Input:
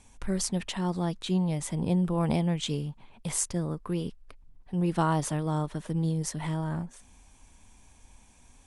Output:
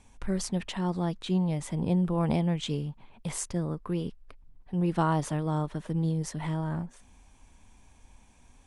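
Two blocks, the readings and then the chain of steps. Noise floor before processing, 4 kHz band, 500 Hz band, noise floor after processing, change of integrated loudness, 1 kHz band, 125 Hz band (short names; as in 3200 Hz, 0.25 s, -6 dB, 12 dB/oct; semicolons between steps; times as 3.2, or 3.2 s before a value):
-57 dBFS, -2.5 dB, 0.0 dB, -58 dBFS, -0.5 dB, 0.0 dB, 0.0 dB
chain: high shelf 5200 Hz -8 dB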